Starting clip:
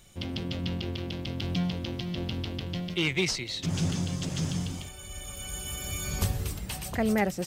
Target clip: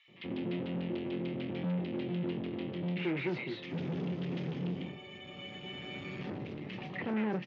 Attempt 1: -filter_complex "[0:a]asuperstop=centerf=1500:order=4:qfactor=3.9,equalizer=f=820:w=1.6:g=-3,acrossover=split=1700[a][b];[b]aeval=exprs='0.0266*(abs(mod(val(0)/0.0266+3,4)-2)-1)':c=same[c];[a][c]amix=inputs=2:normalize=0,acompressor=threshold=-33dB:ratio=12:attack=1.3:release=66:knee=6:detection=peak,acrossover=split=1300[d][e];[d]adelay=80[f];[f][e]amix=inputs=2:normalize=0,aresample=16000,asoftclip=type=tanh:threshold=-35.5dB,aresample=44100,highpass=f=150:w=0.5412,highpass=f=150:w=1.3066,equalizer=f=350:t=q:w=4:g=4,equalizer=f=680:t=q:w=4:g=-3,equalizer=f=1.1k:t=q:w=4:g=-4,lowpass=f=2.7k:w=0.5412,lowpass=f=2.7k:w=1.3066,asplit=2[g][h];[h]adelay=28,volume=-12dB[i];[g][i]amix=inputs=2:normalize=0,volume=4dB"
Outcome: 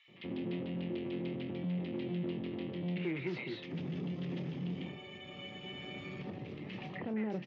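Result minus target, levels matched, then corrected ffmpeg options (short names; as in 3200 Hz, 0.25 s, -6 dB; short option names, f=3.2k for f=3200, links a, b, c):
compressor: peak gain reduction +13.5 dB
-filter_complex "[0:a]asuperstop=centerf=1500:order=4:qfactor=3.9,equalizer=f=820:w=1.6:g=-3,acrossover=split=1700[a][b];[b]aeval=exprs='0.0266*(abs(mod(val(0)/0.0266+3,4)-2)-1)':c=same[c];[a][c]amix=inputs=2:normalize=0,acrossover=split=1300[d][e];[d]adelay=80[f];[f][e]amix=inputs=2:normalize=0,aresample=16000,asoftclip=type=tanh:threshold=-35.5dB,aresample=44100,highpass=f=150:w=0.5412,highpass=f=150:w=1.3066,equalizer=f=350:t=q:w=4:g=4,equalizer=f=680:t=q:w=4:g=-3,equalizer=f=1.1k:t=q:w=4:g=-4,lowpass=f=2.7k:w=0.5412,lowpass=f=2.7k:w=1.3066,asplit=2[g][h];[h]adelay=28,volume=-12dB[i];[g][i]amix=inputs=2:normalize=0,volume=4dB"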